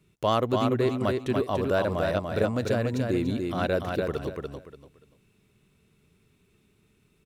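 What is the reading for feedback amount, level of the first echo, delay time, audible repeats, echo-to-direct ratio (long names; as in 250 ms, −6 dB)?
25%, −4.0 dB, 290 ms, 3, −3.5 dB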